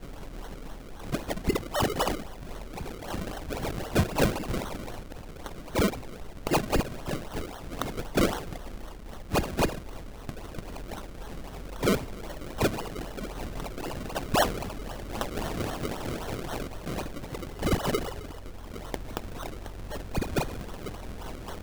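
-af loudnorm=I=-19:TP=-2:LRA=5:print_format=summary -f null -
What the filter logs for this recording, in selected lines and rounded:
Input Integrated:    -32.8 LUFS
Input True Peak:     -12.3 dBTP
Input LRA:             5.7 LU
Input Threshold:     -43.1 LUFS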